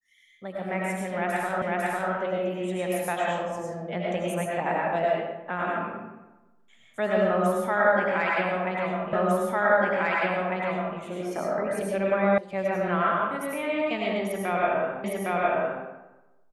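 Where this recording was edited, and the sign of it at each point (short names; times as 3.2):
1.62 repeat of the last 0.5 s
9.13 repeat of the last 1.85 s
12.38 sound cut off
15.04 repeat of the last 0.81 s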